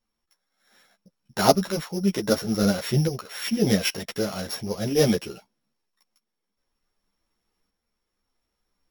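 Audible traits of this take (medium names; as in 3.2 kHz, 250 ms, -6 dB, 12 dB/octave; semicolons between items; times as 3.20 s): a buzz of ramps at a fixed pitch in blocks of 8 samples; tremolo saw up 0.65 Hz, depth 50%; a shimmering, thickened sound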